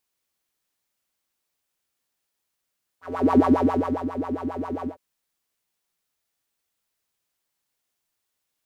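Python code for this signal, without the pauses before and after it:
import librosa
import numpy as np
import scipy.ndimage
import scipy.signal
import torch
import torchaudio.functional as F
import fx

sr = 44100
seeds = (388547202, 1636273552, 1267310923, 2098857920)

y = fx.sub_patch_wobble(sr, seeds[0], note=41, wave='square', wave2='saw', interval_st=0, level2_db=-9.0, sub_db=-15.0, noise_db=-9.0, kind='bandpass', cutoff_hz=380.0, q=7.1, env_oct=1.0, env_decay_s=0.25, env_sustain_pct=45, attack_ms=359.0, decay_s=0.7, sustain_db=-12.0, release_s=0.11, note_s=1.85, lfo_hz=7.4, wobble_oct=1.1)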